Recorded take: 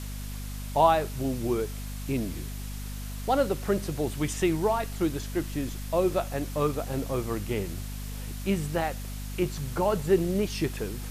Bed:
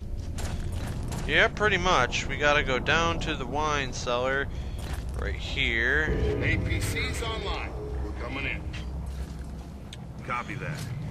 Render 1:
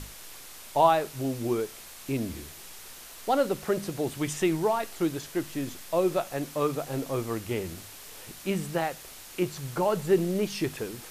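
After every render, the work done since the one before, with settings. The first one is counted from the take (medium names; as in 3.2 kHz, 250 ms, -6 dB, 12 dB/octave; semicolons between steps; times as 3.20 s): hum notches 50/100/150/200/250 Hz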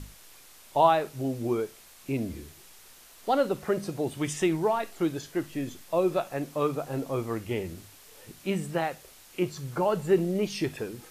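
noise print and reduce 7 dB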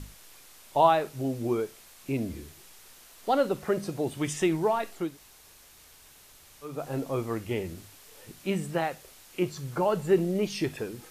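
5.06–6.73 s: room tone, crossfade 0.24 s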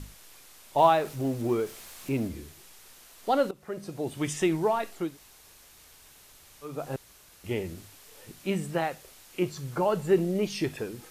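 0.78–2.28 s: companding laws mixed up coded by mu; 3.51–4.24 s: fade in, from -20.5 dB; 6.96–7.44 s: room tone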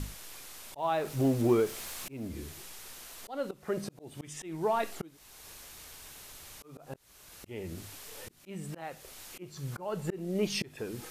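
in parallel at -2 dB: compression 5:1, threshold -34 dBFS, peak gain reduction 17 dB; on the sum: slow attack 484 ms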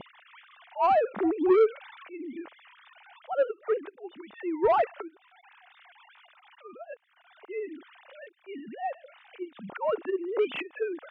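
formants replaced by sine waves; overdrive pedal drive 19 dB, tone 1.6 kHz, clips at -12.5 dBFS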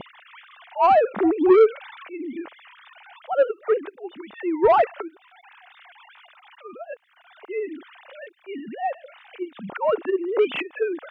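trim +6.5 dB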